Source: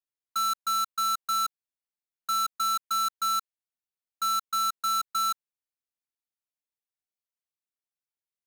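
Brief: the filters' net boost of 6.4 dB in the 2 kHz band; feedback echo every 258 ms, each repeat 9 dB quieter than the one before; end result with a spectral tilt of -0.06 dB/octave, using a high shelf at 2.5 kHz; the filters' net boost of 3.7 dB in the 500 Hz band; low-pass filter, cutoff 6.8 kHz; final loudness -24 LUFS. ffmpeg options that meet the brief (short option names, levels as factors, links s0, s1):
-af "lowpass=6800,equalizer=f=500:t=o:g=4,equalizer=f=2000:t=o:g=7,highshelf=f=2500:g=3.5,aecho=1:1:258|516|774|1032:0.355|0.124|0.0435|0.0152,volume=0.944"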